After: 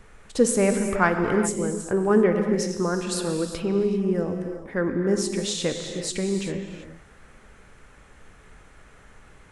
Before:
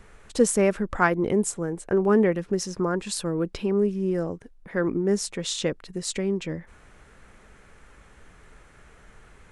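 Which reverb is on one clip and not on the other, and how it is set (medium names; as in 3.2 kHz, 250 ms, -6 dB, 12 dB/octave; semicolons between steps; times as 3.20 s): gated-style reverb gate 420 ms flat, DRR 4.5 dB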